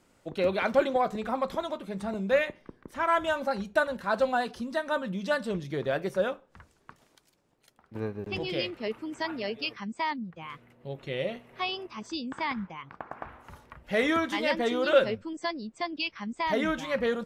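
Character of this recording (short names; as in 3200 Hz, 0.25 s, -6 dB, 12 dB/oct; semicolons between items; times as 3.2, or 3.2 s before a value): noise floor -67 dBFS; spectral tilt -3.0 dB/oct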